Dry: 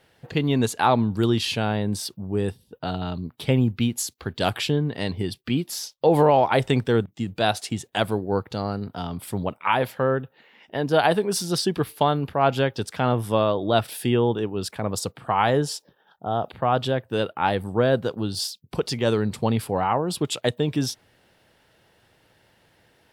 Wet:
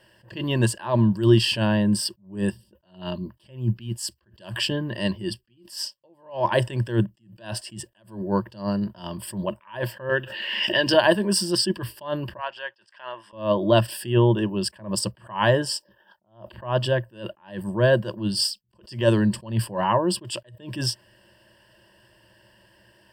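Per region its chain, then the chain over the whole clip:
10.09–10.94 median filter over 3 samples + weighting filter D + backwards sustainer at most 35 dB/s
12.37–13.33 HPF 1300 Hz + tape spacing loss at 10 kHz 25 dB
whole clip: ripple EQ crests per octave 1.3, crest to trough 15 dB; attack slew limiter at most 160 dB/s

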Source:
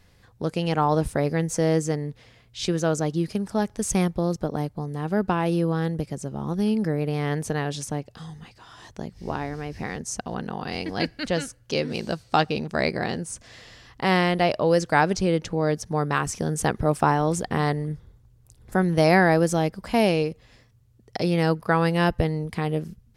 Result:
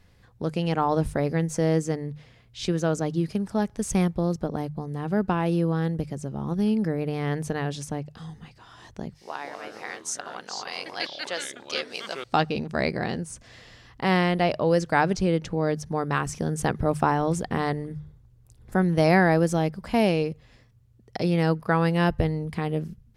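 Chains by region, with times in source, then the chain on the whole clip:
9.15–12.24 HPF 690 Hz + bell 8200 Hz +6 dB 2.2 oct + echoes that change speed 0.127 s, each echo -5 st, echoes 2, each echo -6 dB
whole clip: tone controls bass +3 dB, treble -3 dB; notches 50/100/150 Hz; gain -2 dB

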